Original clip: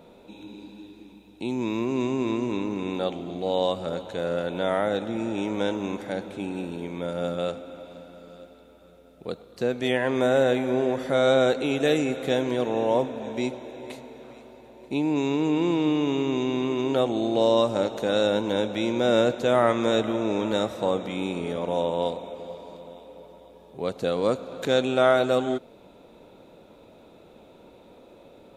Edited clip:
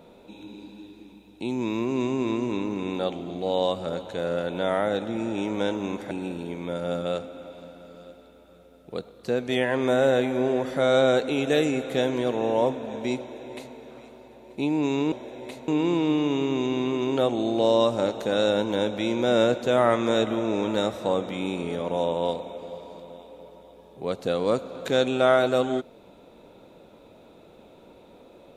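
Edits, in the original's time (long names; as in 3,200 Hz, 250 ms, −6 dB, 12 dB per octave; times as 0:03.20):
0:06.11–0:06.44: remove
0:13.53–0:14.09: duplicate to 0:15.45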